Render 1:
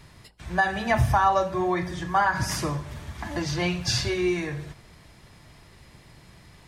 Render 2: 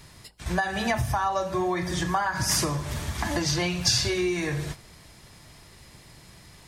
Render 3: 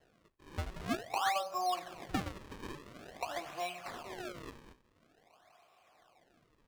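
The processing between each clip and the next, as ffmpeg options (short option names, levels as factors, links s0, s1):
-af "agate=range=0.447:threshold=0.00891:ratio=16:detection=peak,acompressor=threshold=0.0282:ratio=6,bass=f=250:g=-1,treble=f=4000:g=7,volume=2.37"
-filter_complex "[0:a]asplit=3[s0][s1][s2];[s0]bandpass=f=730:t=q:w=8,volume=1[s3];[s1]bandpass=f=1090:t=q:w=8,volume=0.501[s4];[s2]bandpass=f=2440:t=q:w=8,volume=0.355[s5];[s3][s4][s5]amix=inputs=3:normalize=0,acrusher=samples=36:mix=1:aa=0.000001:lfo=1:lforange=57.6:lforate=0.48,asplit=2[s6][s7];[s7]highpass=f=720:p=1,volume=2,asoftclip=type=tanh:threshold=0.1[s8];[s6][s8]amix=inputs=2:normalize=0,lowpass=f=4400:p=1,volume=0.501"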